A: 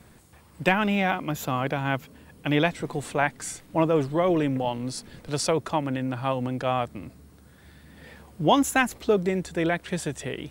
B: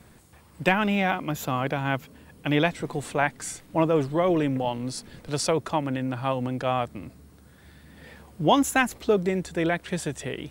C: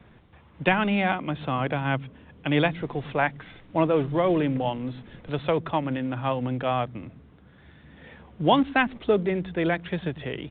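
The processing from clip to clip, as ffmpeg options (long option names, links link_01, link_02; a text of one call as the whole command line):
ffmpeg -i in.wav -af anull out.wav
ffmpeg -i in.wav -filter_complex "[0:a]acrossover=split=230[link_01][link_02];[link_01]aecho=1:1:103:0.473[link_03];[link_02]acrusher=bits=5:mode=log:mix=0:aa=0.000001[link_04];[link_03][link_04]amix=inputs=2:normalize=0,aresample=8000,aresample=44100" out.wav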